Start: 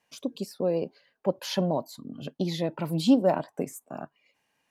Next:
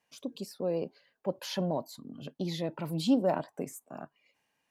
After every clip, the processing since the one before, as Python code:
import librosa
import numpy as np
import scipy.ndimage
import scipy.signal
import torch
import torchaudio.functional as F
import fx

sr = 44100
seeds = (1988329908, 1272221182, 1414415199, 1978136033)

y = fx.transient(x, sr, attack_db=-2, sustain_db=2)
y = y * 10.0 ** (-4.5 / 20.0)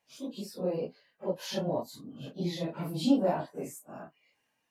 y = fx.phase_scramble(x, sr, seeds[0], window_ms=100)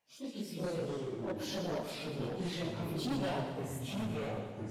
y = np.clip(10.0 ** (30.0 / 20.0) * x, -1.0, 1.0) / 10.0 ** (30.0 / 20.0)
y = fx.echo_pitch(y, sr, ms=87, semitones=-4, count=2, db_per_echo=-3.0)
y = fx.echo_feedback(y, sr, ms=119, feedback_pct=59, wet_db=-8)
y = y * 10.0 ** (-4.0 / 20.0)